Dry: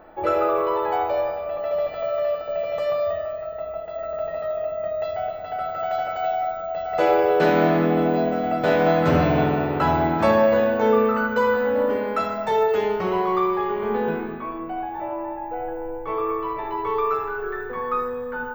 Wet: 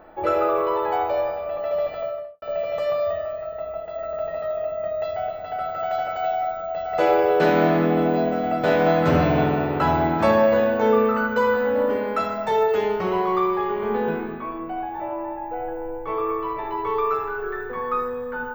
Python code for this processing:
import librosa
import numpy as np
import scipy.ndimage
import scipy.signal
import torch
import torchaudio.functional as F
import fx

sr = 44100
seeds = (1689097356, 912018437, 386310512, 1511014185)

y = fx.studio_fade_out(x, sr, start_s=1.91, length_s=0.51)